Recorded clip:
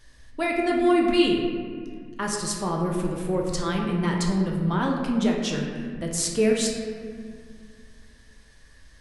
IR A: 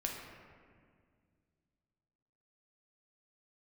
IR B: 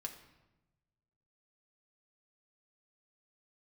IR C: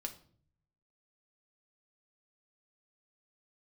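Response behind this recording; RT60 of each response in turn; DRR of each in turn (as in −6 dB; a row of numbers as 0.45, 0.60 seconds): A; 2.0, 1.0, 0.50 seconds; −1.0, 2.0, 3.5 decibels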